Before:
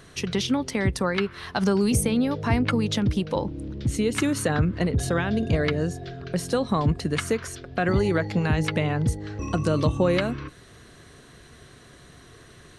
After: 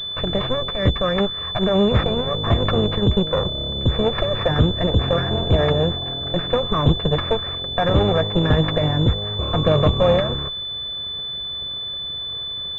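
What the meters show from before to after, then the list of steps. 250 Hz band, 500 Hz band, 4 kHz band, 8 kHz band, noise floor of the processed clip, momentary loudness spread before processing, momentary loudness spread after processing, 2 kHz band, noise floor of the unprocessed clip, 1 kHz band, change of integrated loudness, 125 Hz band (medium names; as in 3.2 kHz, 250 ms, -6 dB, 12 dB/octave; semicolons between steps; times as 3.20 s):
+1.0 dB, +6.5 dB, +14.5 dB, under -20 dB, -29 dBFS, 8 LU, 8 LU, 0.0 dB, -50 dBFS, +5.5 dB, +4.5 dB, +5.5 dB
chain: comb filter that takes the minimum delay 1.7 ms; class-D stage that switches slowly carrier 3.5 kHz; trim +7.5 dB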